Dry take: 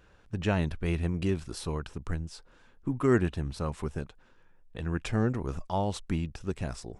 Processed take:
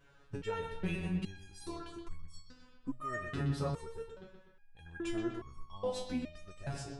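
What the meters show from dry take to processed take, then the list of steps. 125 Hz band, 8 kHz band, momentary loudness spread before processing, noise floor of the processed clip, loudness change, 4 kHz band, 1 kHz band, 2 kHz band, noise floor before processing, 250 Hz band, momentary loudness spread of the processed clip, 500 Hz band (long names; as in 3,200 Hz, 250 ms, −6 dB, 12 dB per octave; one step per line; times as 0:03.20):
−9.5 dB, −6.5 dB, 12 LU, −62 dBFS, −8.0 dB, −5.5 dB, −7.0 dB, −6.0 dB, −59 dBFS, −8.5 dB, 17 LU, −8.0 dB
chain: bucket-brigade delay 124 ms, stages 4,096, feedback 48%, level −7 dB
step-sequenced resonator 2.4 Hz 140–1,100 Hz
level +8 dB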